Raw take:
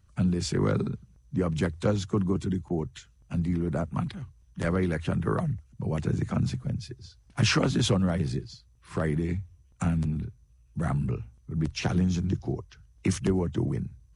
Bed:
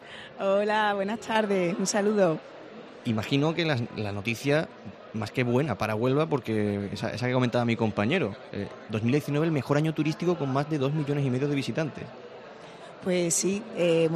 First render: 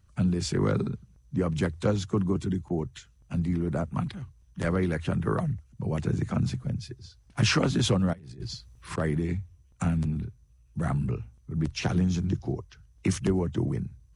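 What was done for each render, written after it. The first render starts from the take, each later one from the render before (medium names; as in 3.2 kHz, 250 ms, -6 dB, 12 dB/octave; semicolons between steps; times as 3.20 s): 8.13–8.98 s: compressor with a negative ratio -41 dBFS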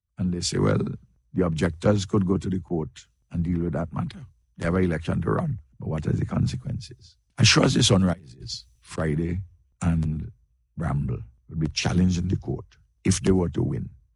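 level rider gain up to 3 dB; three bands expanded up and down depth 70%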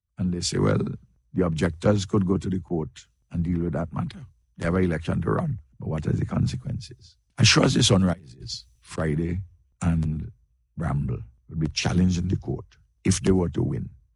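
no audible change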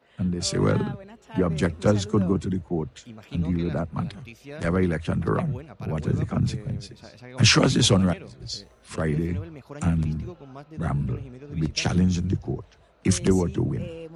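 add bed -15.5 dB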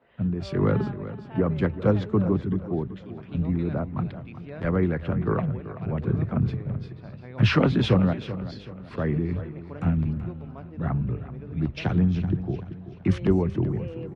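distance through air 400 m; feedback delay 382 ms, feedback 41%, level -13.5 dB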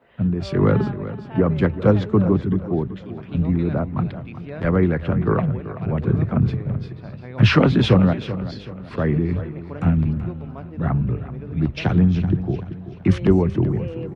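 trim +5.5 dB; peak limiter -2 dBFS, peak gain reduction 1.5 dB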